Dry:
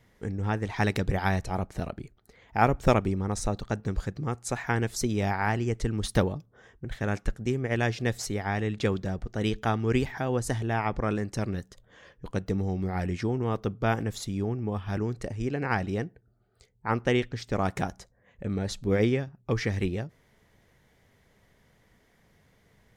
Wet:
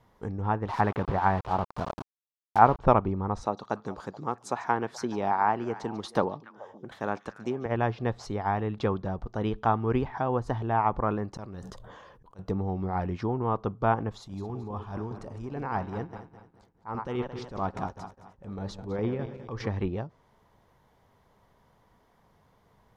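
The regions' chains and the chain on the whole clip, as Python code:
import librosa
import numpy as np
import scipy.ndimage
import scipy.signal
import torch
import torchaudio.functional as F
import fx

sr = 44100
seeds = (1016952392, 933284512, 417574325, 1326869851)

y = fx.chain(x, sr, fx.highpass(hz=50.0, slope=6),
    fx.high_shelf_res(hz=2700.0, db=-8.5, q=1.5),
    fx.quant_dither(seeds[0], bits=6, dither='none'), at=(0.68, 2.79))
y = fx.chain(y, sr, fx.highpass(hz=210.0, slope=12),
    fx.echo_stepped(ms=143, hz=4800.0, octaves=-1.4, feedback_pct=70, wet_db=-11), at=(3.43, 7.66))
y = fx.chain(y, sr, fx.auto_swell(attack_ms=413.0),
    fx.sustainer(db_per_s=28.0), at=(11.31, 12.39))
y = fx.chain(y, sr, fx.reverse_delay_fb(ms=110, feedback_pct=62, wet_db=-12.5),
    fx.tremolo_shape(shape='saw_down', hz=4.9, depth_pct=65),
    fx.transient(attack_db=-10, sustain_db=2), at=(14.09, 19.67))
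y = fx.env_lowpass_down(y, sr, base_hz=2700.0, full_db=-24.0)
y = fx.graphic_eq_10(y, sr, hz=(1000, 2000, 8000), db=(12, -8, -6))
y = F.gain(torch.from_numpy(y), -2.0).numpy()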